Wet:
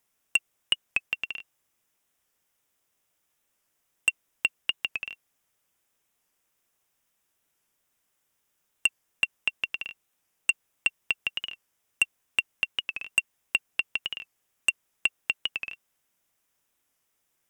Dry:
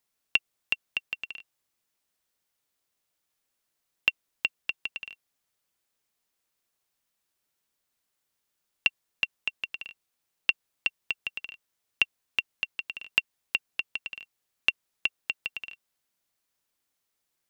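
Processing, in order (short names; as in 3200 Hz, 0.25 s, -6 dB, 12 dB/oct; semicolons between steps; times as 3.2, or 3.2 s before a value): bell 4300 Hz -10.5 dB 0.3 oct; sine folder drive 6 dB, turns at -7.5 dBFS; record warp 45 rpm, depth 100 cents; gain -4.5 dB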